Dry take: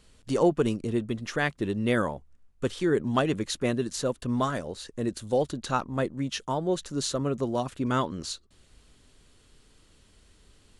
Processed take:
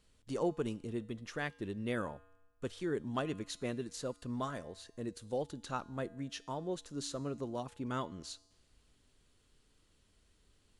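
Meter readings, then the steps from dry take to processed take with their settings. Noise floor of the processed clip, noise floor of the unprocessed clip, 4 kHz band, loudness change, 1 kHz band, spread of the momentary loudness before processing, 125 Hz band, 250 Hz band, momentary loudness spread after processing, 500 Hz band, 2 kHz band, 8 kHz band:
−71 dBFS, −60 dBFS, −11.0 dB, −11.0 dB, −11.0 dB, 8 LU, −11.5 dB, −11.0 dB, 8 LU, −11.5 dB, −11.0 dB, −11.0 dB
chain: tuned comb filter 95 Hz, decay 1.1 s, harmonics odd, mix 50%
level −5.5 dB

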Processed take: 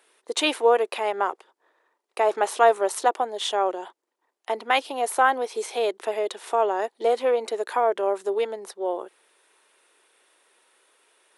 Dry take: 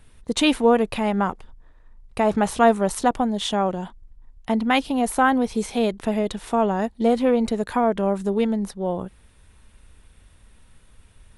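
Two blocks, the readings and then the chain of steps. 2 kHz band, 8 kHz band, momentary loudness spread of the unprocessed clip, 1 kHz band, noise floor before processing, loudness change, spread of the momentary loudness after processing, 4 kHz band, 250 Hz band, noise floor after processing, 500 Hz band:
−0.5 dB, −1.0 dB, 9 LU, 0.0 dB, −53 dBFS, −2.5 dB, 11 LU, −1.0 dB, −16.5 dB, −80 dBFS, −0.5 dB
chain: elliptic high-pass filter 360 Hz, stop band 80 dB

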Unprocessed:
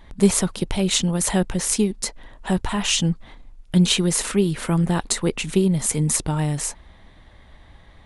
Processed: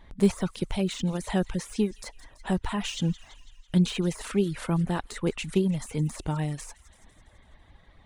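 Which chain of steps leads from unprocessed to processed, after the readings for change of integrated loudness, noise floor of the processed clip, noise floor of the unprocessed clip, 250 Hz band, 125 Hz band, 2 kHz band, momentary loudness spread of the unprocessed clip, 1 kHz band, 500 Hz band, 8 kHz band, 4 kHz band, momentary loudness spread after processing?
−7.5 dB, −58 dBFS, −49 dBFS, −5.5 dB, −6.0 dB, −8.0 dB, 7 LU, −6.0 dB, −5.5 dB, −18.0 dB, −12.5 dB, 8 LU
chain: de-essing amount 50%
high-shelf EQ 5,800 Hz −5 dB
on a send: delay with a high-pass on its return 166 ms, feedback 54%, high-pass 1,500 Hz, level −11.5 dB
on the sum: reverb reduction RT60 0.67 s
level −5 dB

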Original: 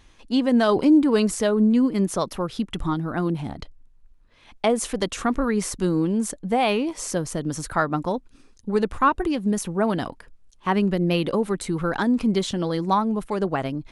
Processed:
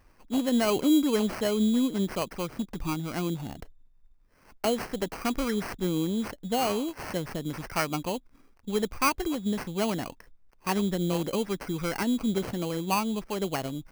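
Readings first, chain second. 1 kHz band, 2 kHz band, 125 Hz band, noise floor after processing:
−6.5 dB, −4.5 dB, −6.0 dB, −60 dBFS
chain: sample-rate reduction 3,600 Hz, jitter 0%
level −6 dB

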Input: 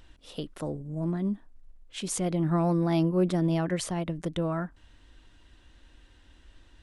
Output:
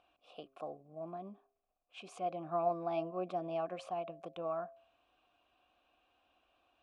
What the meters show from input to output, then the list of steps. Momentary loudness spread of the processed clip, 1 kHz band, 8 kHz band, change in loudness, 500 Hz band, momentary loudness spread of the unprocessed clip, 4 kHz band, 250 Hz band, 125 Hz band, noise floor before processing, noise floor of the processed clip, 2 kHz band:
18 LU, −2.0 dB, below −25 dB, −10.5 dB, −6.5 dB, 14 LU, −15.0 dB, −19.0 dB, −24.0 dB, −58 dBFS, −84 dBFS, −13.0 dB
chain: formant filter a
hum removal 134.3 Hz, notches 5
level +3.5 dB

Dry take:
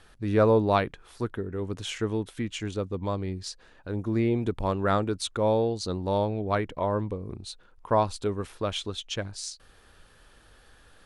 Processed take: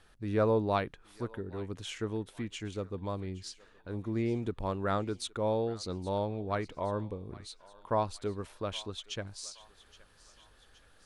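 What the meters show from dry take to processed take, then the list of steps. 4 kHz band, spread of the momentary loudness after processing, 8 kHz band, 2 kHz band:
−6.5 dB, 12 LU, −6.5 dB, −6.5 dB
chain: feedback echo with a high-pass in the loop 820 ms, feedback 62%, high-pass 990 Hz, level −18 dB
level −6.5 dB

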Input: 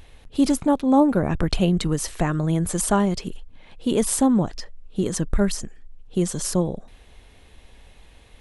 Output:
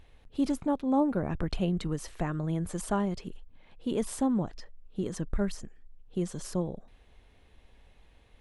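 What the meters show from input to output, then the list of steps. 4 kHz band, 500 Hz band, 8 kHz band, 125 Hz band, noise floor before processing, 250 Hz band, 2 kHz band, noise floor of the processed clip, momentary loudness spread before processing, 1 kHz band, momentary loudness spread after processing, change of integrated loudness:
−13.0 dB, −9.0 dB, −16.0 dB, −9.0 dB, −50 dBFS, −9.0 dB, −10.0 dB, −60 dBFS, 13 LU, −9.5 dB, 12 LU, −9.5 dB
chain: high-shelf EQ 4,600 Hz −9 dB
level −9 dB

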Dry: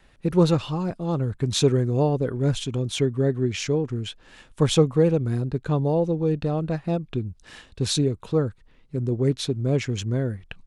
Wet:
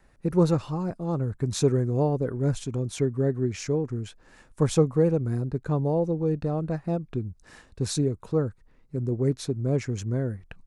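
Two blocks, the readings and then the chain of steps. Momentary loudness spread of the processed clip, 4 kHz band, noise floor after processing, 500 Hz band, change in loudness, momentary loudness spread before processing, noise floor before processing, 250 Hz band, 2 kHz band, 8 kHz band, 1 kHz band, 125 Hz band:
9 LU, −10.0 dB, −59 dBFS, −2.5 dB, −3.0 dB, 9 LU, −55 dBFS, −2.5 dB, −6.5 dB, −4.0 dB, −3.0 dB, −2.5 dB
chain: parametric band 3,200 Hz −11.5 dB 0.85 octaves
level −2.5 dB

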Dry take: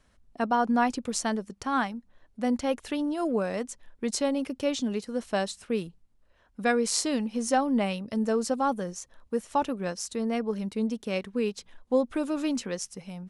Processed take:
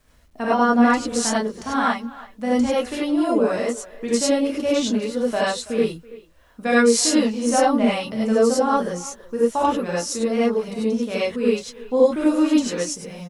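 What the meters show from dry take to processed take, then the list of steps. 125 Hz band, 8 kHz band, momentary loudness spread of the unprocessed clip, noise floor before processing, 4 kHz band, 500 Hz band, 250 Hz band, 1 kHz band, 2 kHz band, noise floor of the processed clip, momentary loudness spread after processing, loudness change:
+4.0 dB, +8.5 dB, 9 LU, −64 dBFS, +8.5 dB, +9.5 dB, +8.0 dB, +6.5 dB, +8.5 dB, −53 dBFS, 10 LU, +8.5 dB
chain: far-end echo of a speakerphone 330 ms, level −18 dB
reverb whose tail is shaped and stops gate 120 ms rising, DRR −7.5 dB
bit reduction 11 bits

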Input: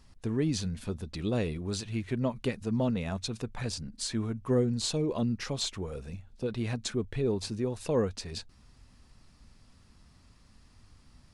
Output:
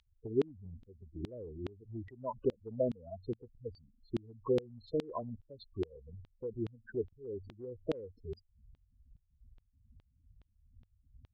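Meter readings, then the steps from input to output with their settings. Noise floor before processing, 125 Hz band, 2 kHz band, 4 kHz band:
−60 dBFS, −12.5 dB, −16.0 dB, −21.5 dB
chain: RIAA equalisation playback
gate on every frequency bin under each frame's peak −20 dB strong
parametric band 190 Hz −14.5 dB 1.6 octaves
downward compressor, threshold −32 dBFS, peak gain reduction 14.5 dB
auto-filter band-pass saw down 2.4 Hz 320–3,500 Hz
level +12.5 dB

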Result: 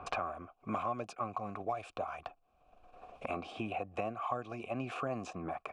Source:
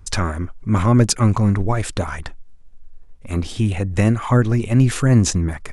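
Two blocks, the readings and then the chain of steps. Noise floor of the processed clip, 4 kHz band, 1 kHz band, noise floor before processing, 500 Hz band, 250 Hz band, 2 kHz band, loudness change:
−72 dBFS, −22.5 dB, −9.5 dB, −43 dBFS, −14.0 dB, −24.0 dB, −16.0 dB, −21.0 dB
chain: formant filter a
multiband upward and downward compressor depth 100%
level −3 dB

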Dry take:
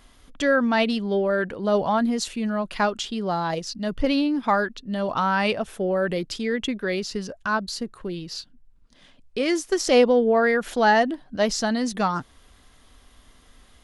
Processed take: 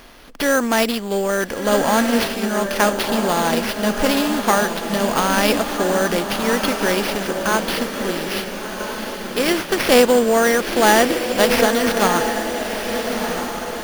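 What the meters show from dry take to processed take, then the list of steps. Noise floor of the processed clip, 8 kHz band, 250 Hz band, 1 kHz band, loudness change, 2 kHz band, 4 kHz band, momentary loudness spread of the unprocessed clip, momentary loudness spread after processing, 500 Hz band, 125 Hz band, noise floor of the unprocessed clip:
−29 dBFS, +11.0 dB, +4.5 dB, +5.5 dB, +5.0 dB, +6.5 dB, +8.5 dB, 11 LU, 9 LU, +5.0 dB, +4.0 dB, −55 dBFS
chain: compressor on every frequency bin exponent 0.6
high-shelf EQ 4,900 Hz +9 dB
sample-rate reduction 7,700 Hz, jitter 0%
feedback delay with all-pass diffusion 1,372 ms, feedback 57%, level −4 dB
expander for the loud parts 1.5 to 1, over −34 dBFS
level +2.5 dB

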